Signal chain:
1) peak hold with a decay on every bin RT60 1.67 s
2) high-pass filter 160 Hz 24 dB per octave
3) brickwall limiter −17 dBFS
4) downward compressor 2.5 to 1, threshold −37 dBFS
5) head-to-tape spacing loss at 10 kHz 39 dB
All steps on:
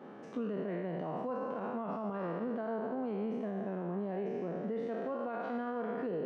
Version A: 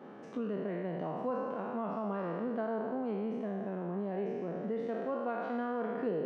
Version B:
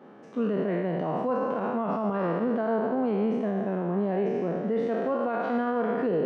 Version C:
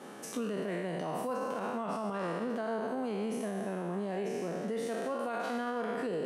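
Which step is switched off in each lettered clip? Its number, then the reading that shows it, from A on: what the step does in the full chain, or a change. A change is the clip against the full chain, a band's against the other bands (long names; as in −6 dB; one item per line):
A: 3, average gain reduction 2.5 dB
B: 4, average gain reduction 9.0 dB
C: 5, 2 kHz band +5.0 dB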